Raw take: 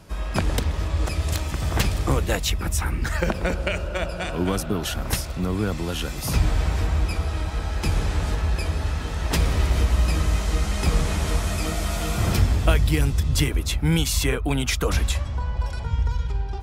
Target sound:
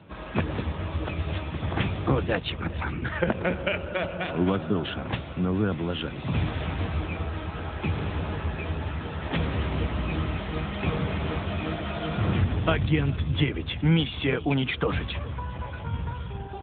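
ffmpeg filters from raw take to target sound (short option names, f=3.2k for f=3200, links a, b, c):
-filter_complex "[0:a]asettb=1/sr,asplit=3[a][b][c];[a]atrim=end=6.384[d];[b]atrim=start=6.38:end=7.02,asetpts=PTS-STARTPTS,afade=t=in:d=0.004:c=qsin,afade=t=out:st=0.636:d=0.004:c=qsin,aemphasis=mode=production:type=50fm[e];[c]atrim=start=7.016[f];[d][e]acrossfade=d=0.004:c1=hsin:c2=qsin[g];[g][f]acrossfade=d=0.004:c1=qsin:c2=hsin,aecho=1:1:412|824:0.106|0.0275" -ar 8000 -c:a libopencore_amrnb -b:a 10200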